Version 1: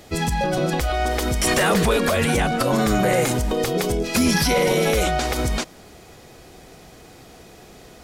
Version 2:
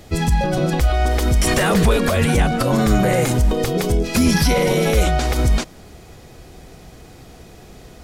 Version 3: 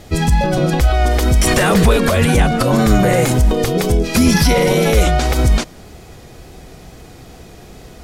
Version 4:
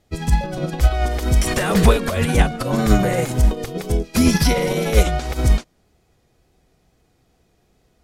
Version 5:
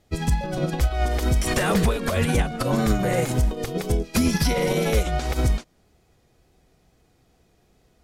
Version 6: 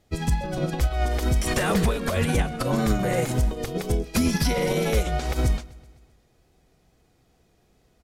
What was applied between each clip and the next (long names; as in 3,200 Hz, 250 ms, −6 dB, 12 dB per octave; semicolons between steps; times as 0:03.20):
low-shelf EQ 160 Hz +10 dB
tape wow and flutter 30 cents; level +3.5 dB
expander for the loud parts 2.5 to 1, over −24 dBFS; level +1 dB
downward compressor 6 to 1, threshold −17 dBFS, peak gain reduction 10 dB
repeating echo 128 ms, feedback 60%, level −22 dB; level −1.5 dB